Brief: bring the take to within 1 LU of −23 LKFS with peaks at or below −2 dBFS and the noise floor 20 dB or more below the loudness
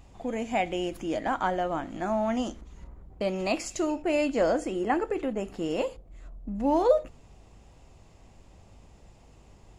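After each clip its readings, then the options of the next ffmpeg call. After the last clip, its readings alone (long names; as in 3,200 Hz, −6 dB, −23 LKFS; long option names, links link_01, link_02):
mains hum 50 Hz; hum harmonics up to 150 Hz; level of the hum −56 dBFS; integrated loudness −28.5 LKFS; sample peak −10.5 dBFS; target loudness −23.0 LKFS
→ -af "bandreject=frequency=50:width_type=h:width=4,bandreject=frequency=100:width_type=h:width=4,bandreject=frequency=150:width_type=h:width=4"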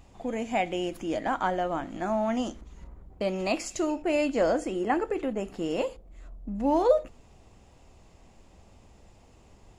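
mains hum none found; integrated loudness −28.5 LKFS; sample peak −10.5 dBFS; target loudness −23.0 LKFS
→ -af "volume=5.5dB"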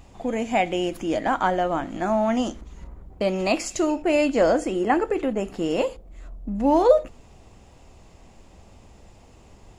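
integrated loudness −23.0 LKFS; sample peak −5.0 dBFS; background noise floor −51 dBFS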